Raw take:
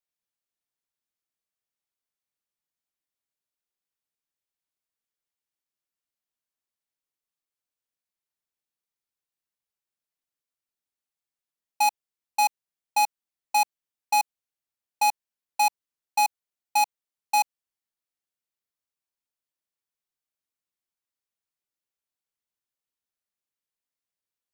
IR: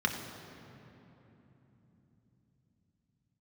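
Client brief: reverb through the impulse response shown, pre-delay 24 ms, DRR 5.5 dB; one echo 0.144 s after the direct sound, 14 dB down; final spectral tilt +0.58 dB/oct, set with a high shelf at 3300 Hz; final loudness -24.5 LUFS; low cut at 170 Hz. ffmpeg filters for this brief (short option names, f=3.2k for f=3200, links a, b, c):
-filter_complex "[0:a]highpass=170,highshelf=f=3.3k:g=-8.5,aecho=1:1:144:0.2,asplit=2[a][b];[1:a]atrim=start_sample=2205,adelay=24[c];[b][c]afir=irnorm=-1:irlink=0,volume=-14.5dB[d];[a][d]amix=inputs=2:normalize=0,volume=3.5dB"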